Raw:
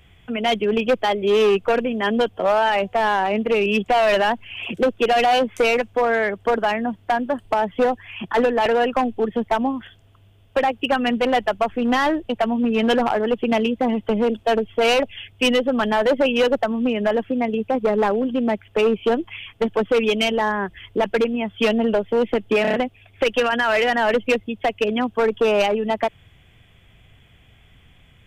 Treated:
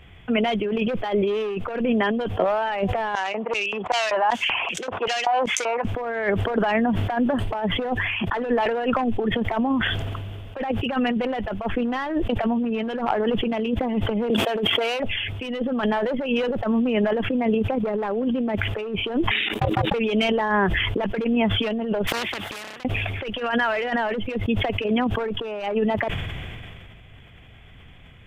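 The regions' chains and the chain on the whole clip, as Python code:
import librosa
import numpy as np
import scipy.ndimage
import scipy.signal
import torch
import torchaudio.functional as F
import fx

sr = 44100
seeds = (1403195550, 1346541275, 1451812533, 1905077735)

y = fx.chain(x, sr, fx.filter_lfo_bandpass(shape='square', hz=2.6, low_hz=940.0, high_hz=6400.0, q=2.9),
    fx.band_squash(depth_pct=40), at=(3.15, 5.85))
y = fx.chain(y, sr, fx.highpass(hz=280.0, slope=12),
    fx.high_shelf(hz=3600.0, db=8.0),
    fx.sustainer(db_per_s=26.0), at=(14.3, 15.0))
y = fx.chain(y, sr, fx.high_shelf(hz=4700.0, db=10.5),
    fx.level_steps(step_db=19),
    fx.ring_mod(carrier_hz=320.0), at=(19.31, 19.94))
y = fx.chain(y, sr, fx.highpass(hz=1100.0, slope=6),
    fx.gate_flip(shuts_db=-33.0, range_db=-33),
    fx.spectral_comp(ratio=4.0), at=(22.07, 22.85))
y = fx.over_compress(y, sr, threshold_db=-23.0, ratio=-0.5)
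y = fx.bass_treble(y, sr, bass_db=-1, treble_db=-10)
y = fx.sustainer(y, sr, db_per_s=23.0)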